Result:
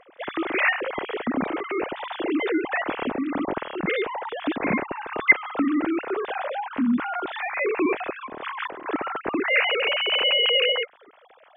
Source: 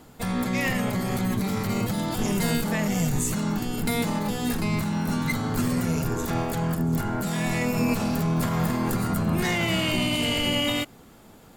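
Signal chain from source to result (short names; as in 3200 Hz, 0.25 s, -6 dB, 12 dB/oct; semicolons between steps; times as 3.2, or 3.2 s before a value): sine-wave speech; 3.52–4.41 air absorption 220 m; 8.26–8.86 negative-ratio compressor -35 dBFS, ratio -1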